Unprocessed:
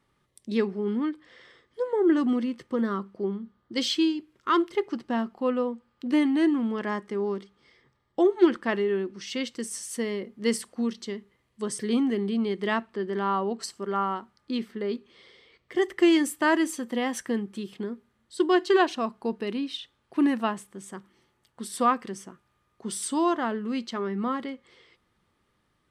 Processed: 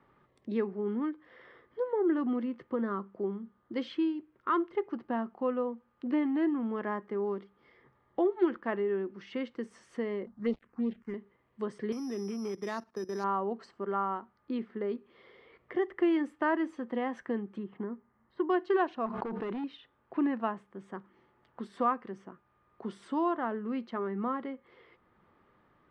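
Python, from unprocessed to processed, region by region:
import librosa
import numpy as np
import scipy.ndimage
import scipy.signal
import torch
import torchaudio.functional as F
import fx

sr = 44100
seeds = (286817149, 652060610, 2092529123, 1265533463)

y = fx.chain(x, sr, fx.dead_time(dead_ms=0.13),
    fx.low_shelf(hz=120.0, db=11.5),
    fx.env_phaser(low_hz=380.0, high_hz=1700.0, full_db=-19.0), at=(10.26, 11.14))
y = fx.chain(y, sr, fx.level_steps(step_db=16),
    fx.resample_bad(factor=8, down='none', up='zero_stuff'), at=(11.92, 13.24))
y = fx.chain(y, sr, fx.cheby1_lowpass(hz=1600.0, order=2),
    fx.comb(ms=1.0, depth=0.31), at=(17.58, 18.5))
y = fx.chain(y, sr, fx.overload_stage(gain_db=30.5),
    fx.env_flatten(amount_pct=100), at=(19.06, 19.64))
y = scipy.signal.sosfilt(scipy.signal.butter(2, 1500.0, 'lowpass', fs=sr, output='sos'), y)
y = fx.low_shelf(y, sr, hz=290.0, db=-6.5)
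y = fx.band_squash(y, sr, depth_pct=40)
y = F.gain(torch.from_numpy(y), -2.5).numpy()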